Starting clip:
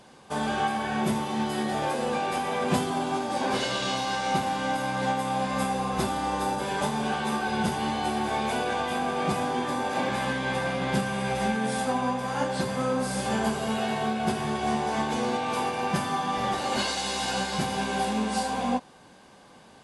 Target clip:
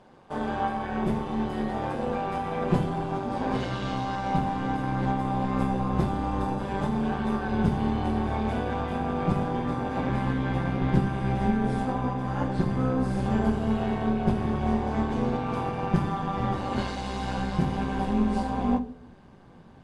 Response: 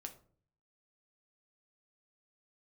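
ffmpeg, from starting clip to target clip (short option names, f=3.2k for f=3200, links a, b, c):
-filter_complex "[0:a]lowpass=f=1.1k:p=1,bandreject=f=50:t=h:w=6,bandreject=f=100:t=h:w=6,bandreject=f=150:t=h:w=6,bandreject=f=200:t=h:w=6,bandreject=f=250:t=h:w=6,asubboost=boost=3.5:cutoff=220,tremolo=f=190:d=0.667,asplit=2[a][b];[1:a]atrim=start_sample=2205,asetrate=30429,aresample=44100[c];[b][c]afir=irnorm=-1:irlink=0,volume=-1dB[d];[a][d]amix=inputs=2:normalize=0,volume=-1dB"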